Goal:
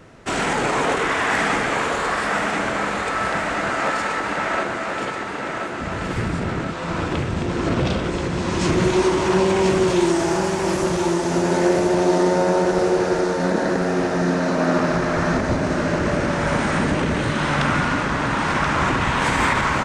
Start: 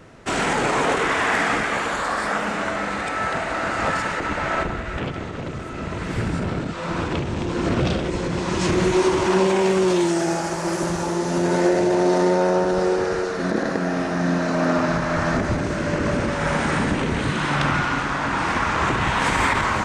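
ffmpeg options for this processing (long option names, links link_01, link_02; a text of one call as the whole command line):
ffmpeg -i in.wav -filter_complex "[0:a]asettb=1/sr,asplit=3[link_01][link_02][link_03];[link_01]atrim=end=3.724[link_04];[link_02]atrim=start=3.72:end=5.8,asetpts=PTS-STARTPTS,afade=type=in:duration=0.004:curve=qsin,afade=type=out:start_time=2.076:duration=0.004:curve=qsin,highpass=240[link_05];[link_03]atrim=start=5.796[link_06];[link_04][link_05]acrossfade=duration=0.004:curve1=hsin:curve2=qsin[link_07];[link_07][link_06]acrossfade=duration=0.004:curve1=qsin:curve2=hsin,aecho=1:1:1030|2060|3090|4120|5150|6180|7210:0.501|0.286|0.163|0.0928|0.0529|0.0302|0.0172" out.wav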